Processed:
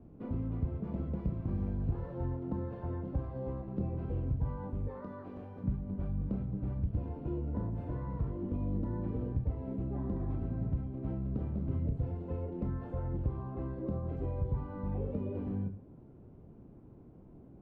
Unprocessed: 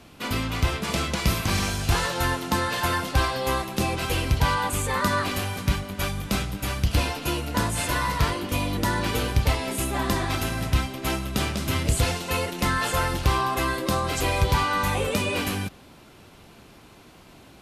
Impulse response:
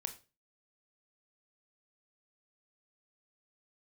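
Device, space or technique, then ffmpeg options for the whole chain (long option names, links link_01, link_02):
television next door: -filter_complex "[0:a]acompressor=threshold=-29dB:ratio=3,lowpass=370[link_01];[1:a]atrim=start_sample=2205[link_02];[link_01][link_02]afir=irnorm=-1:irlink=0,asettb=1/sr,asplit=3[link_03][link_04][link_05];[link_03]atrim=end=4.884[link_06];[link_04]atrim=start=4.88:end=5.64,asetpts=PTS-STARTPTS,afade=type=in:duration=0.004:curve=qsin,afade=type=out:start_time=0.756:duration=0.004:curve=qsin,bass=frequency=250:gain=-13,treble=frequency=4000:gain=3[link_07];[link_05]atrim=start=5.636[link_08];[link_06][link_07]acrossfade=duration=0.004:curve1=hsin:curve2=qsin[link_09];[link_09][link_08]acrossfade=duration=0.004:curve1=qsin:curve2=hsin"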